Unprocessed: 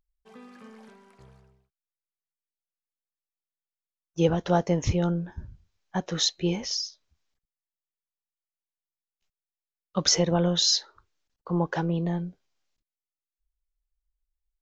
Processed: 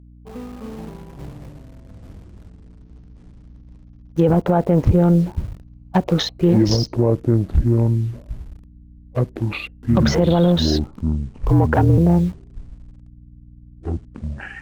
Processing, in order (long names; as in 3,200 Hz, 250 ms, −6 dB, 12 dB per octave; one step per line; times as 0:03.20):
adaptive Wiener filter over 25 samples
treble cut that deepens with the level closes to 1,700 Hz, closed at −24.5 dBFS
mains hum 60 Hz, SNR 24 dB
0:10.73–0:11.98: frequency shifter −49 Hz
in parallel at −8.5 dB: bit-depth reduction 8 bits, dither none
on the sum: delay with pitch and tempo change per echo 248 ms, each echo −7 semitones, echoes 3, each echo −6 dB
boost into a limiter +17 dB
level −5 dB